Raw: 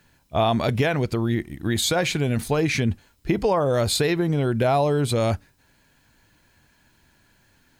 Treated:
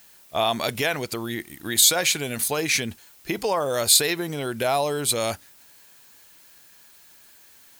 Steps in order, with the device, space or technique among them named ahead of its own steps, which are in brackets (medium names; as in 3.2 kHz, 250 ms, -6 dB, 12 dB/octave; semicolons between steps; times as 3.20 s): turntable without a phono preamp (RIAA curve recording; white noise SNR 31 dB); trim -1 dB